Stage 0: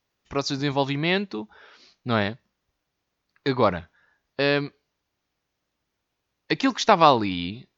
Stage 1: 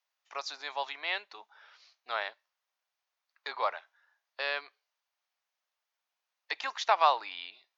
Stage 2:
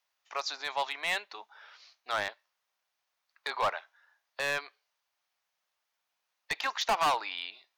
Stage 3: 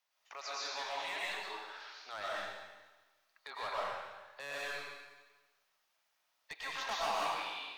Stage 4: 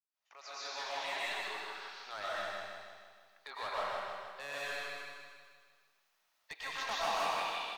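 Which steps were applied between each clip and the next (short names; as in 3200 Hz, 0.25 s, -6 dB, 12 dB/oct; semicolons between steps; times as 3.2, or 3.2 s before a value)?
HPF 680 Hz 24 dB/oct; dynamic EQ 5900 Hz, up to -5 dB, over -42 dBFS, Q 1.2; gain -6.5 dB
hard clip -27 dBFS, distortion -5 dB; gain +4 dB
limiter -34 dBFS, peak gain reduction 11 dB; reverb RT60 1.3 s, pre-delay 80 ms, DRR -6.5 dB; gain -3 dB
opening faded in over 0.94 s; feedback echo 0.156 s, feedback 55%, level -5 dB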